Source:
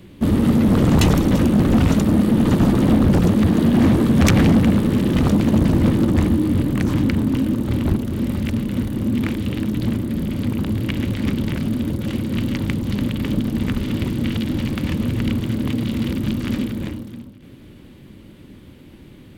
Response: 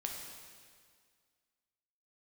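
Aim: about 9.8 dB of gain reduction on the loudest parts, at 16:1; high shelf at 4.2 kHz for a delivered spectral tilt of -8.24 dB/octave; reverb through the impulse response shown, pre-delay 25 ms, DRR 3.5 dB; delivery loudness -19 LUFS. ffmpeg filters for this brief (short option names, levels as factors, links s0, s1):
-filter_complex "[0:a]highshelf=f=4200:g=-6.5,acompressor=threshold=0.0891:ratio=16,asplit=2[s0][s1];[1:a]atrim=start_sample=2205,adelay=25[s2];[s1][s2]afir=irnorm=-1:irlink=0,volume=0.631[s3];[s0][s3]amix=inputs=2:normalize=0,volume=1.88"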